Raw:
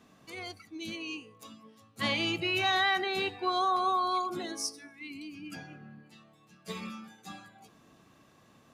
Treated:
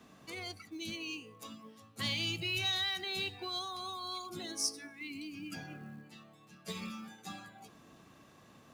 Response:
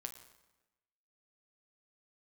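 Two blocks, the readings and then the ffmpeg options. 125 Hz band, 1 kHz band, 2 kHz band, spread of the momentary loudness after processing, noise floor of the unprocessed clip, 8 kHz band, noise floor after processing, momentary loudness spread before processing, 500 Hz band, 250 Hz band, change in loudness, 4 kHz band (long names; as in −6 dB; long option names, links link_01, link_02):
0.0 dB, −14.5 dB, −7.0 dB, 19 LU, −62 dBFS, +1.5 dB, −60 dBFS, 21 LU, −10.5 dB, −5.5 dB, −6.5 dB, −1.5 dB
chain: -filter_complex "[0:a]acrossover=split=170|3000[link_01][link_02][link_03];[link_02]acompressor=threshold=-44dB:ratio=10[link_04];[link_01][link_04][link_03]amix=inputs=3:normalize=0,acrusher=bits=7:mode=log:mix=0:aa=0.000001,volume=1.5dB"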